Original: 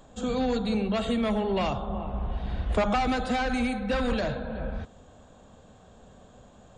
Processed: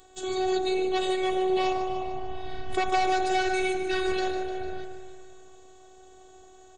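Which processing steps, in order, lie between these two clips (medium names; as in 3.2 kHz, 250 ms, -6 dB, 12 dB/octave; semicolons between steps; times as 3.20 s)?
bass shelf 290 Hz -11.5 dB; spring tank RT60 2.5 s, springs 55 ms, chirp 70 ms, DRR 9.5 dB; robot voice 373 Hz; peaking EQ 1.1 kHz -7 dB 1.1 oct; feedback delay 150 ms, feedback 59%, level -9 dB; trim +6.5 dB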